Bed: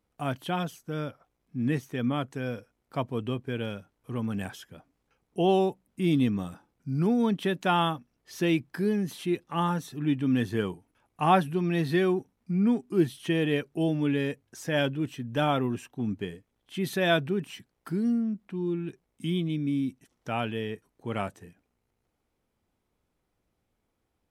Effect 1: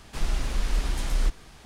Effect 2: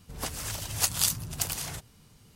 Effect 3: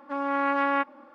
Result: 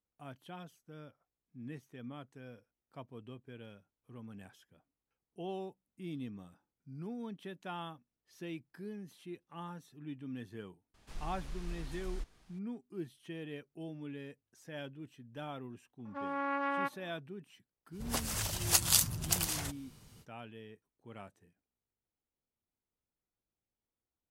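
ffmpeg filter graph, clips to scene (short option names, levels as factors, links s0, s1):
-filter_complex "[0:a]volume=0.126[s0];[1:a]atrim=end=1.65,asetpts=PTS-STARTPTS,volume=0.141,afade=t=in:d=0.004:c=hsin,afade=t=out:st=1.646:d=0.004:c=hsin,adelay=10940[s1];[3:a]atrim=end=1.14,asetpts=PTS-STARTPTS,volume=0.335,afade=t=in:d=0.004:c=hsin,afade=t=out:st=1.136:d=0.004:c=hsin,adelay=16050[s2];[2:a]atrim=end=2.35,asetpts=PTS-STARTPTS,volume=0.891,afade=t=in:d=0.05,afade=t=out:st=2.3:d=0.05,adelay=17910[s3];[s0][s1][s2][s3]amix=inputs=4:normalize=0"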